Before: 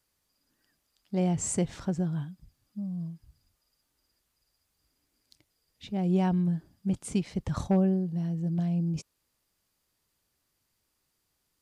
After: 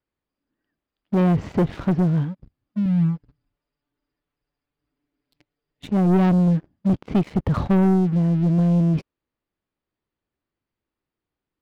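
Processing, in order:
Bessel low-pass filter 2,400 Hz, order 8
parametric band 320 Hz +5.5 dB 1.2 octaves
leveller curve on the samples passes 3
0:02.85–0:05.86: comb filter 6.9 ms, depth 84%

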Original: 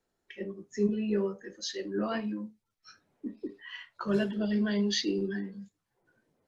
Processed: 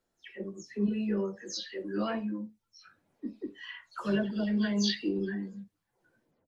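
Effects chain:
every frequency bin delayed by itself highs early, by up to 164 ms

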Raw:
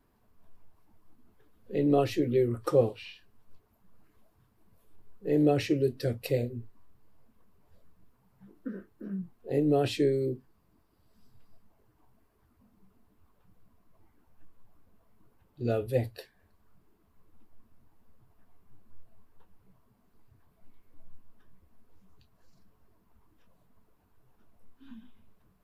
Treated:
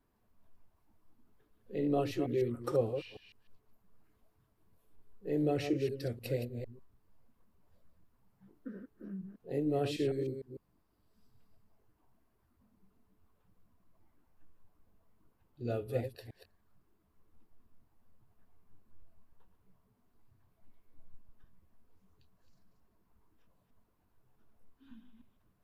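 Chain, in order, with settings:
delay that plays each chunk backwards 151 ms, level −7.5 dB
level −7 dB

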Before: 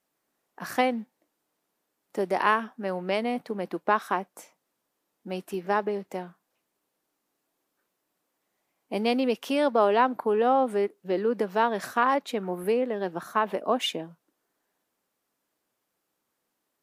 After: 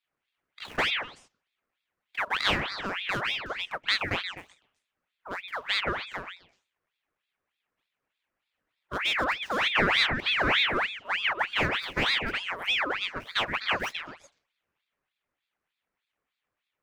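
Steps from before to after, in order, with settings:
running median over 15 samples
echo through a band-pass that steps 125 ms, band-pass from 690 Hz, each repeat 1.4 octaves, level −3.5 dB
ring modulator whose carrier an LFO sweeps 1,900 Hz, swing 60%, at 3.3 Hz

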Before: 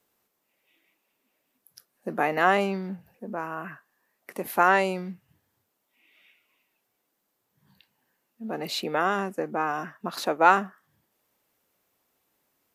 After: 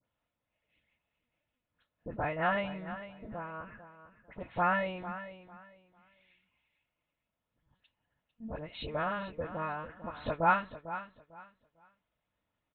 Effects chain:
linear-prediction vocoder at 8 kHz pitch kept
notch comb filter 390 Hz
all-pass dispersion highs, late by 58 ms, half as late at 1,900 Hz
on a send: repeating echo 449 ms, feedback 23%, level −13 dB
on the sum: level −6.5 dB

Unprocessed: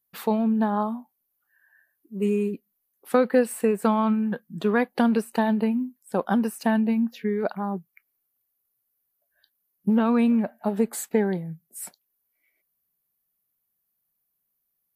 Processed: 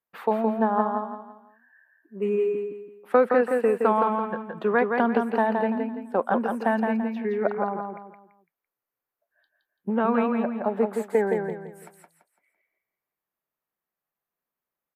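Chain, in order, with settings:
three-way crossover with the lows and the highs turned down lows −13 dB, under 330 Hz, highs −21 dB, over 2,400 Hz
on a send: repeating echo 168 ms, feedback 34%, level −4.5 dB
on the sum: level +3 dB

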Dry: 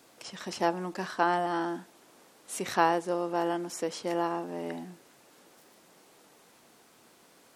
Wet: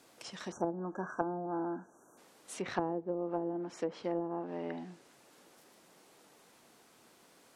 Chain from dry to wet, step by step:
time-frequency box erased 0:00.52–0:02.18, 1,700–5,700 Hz
treble cut that deepens with the level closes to 420 Hz, closed at −24.5 dBFS
level −3 dB

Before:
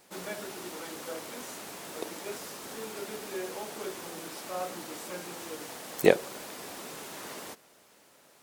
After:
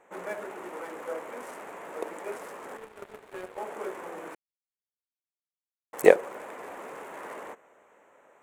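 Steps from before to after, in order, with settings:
adaptive Wiener filter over 9 samples
octave-band graphic EQ 125/500/1,000/2,000/4,000/8,000 Hz −6/+8/+7/+7/−7/+8 dB
0:02.77–0:03.58: power curve on the samples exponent 2
0:04.35–0:05.93: silence
level −4 dB

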